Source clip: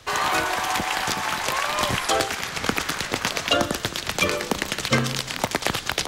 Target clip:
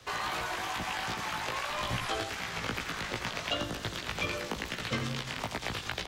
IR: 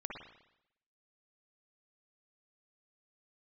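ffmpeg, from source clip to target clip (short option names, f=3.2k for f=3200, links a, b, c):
-filter_complex "[0:a]acrossover=split=3400[a][b];[b]acompressor=threshold=-37dB:ratio=4:attack=1:release=60[c];[a][c]amix=inputs=2:normalize=0,equalizer=f=10k:t=o:w=0.77:g=-2.5,acrossover=split=140|3000[d][e][f];[e]acompressor=threshold=-30dB:ratio=3[g];[d][g][f]amix=inputs=3:normalize=0,flanger=delay=16.5:depth=2:speed=2.5,asplit=2[h][i];[i]aecho=0:1:85:0.335[j];[h][j]amix=inputs=2:normalize=0,volume=-2dB"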